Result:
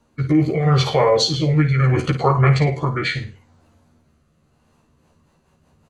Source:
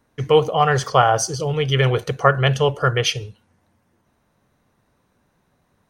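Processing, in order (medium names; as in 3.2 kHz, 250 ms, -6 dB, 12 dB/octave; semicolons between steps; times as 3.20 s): peak limiter -12.5 dBFS, peak gain reduction 11 dB; rotary cabinet horn 0.75 Hz, later 5.5 Hz, at 4.45 s; doubling 13 ms -2 dB; flutter echo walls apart 9.2 m, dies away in 0.31 s; formant shift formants -6 st; trim +5 dB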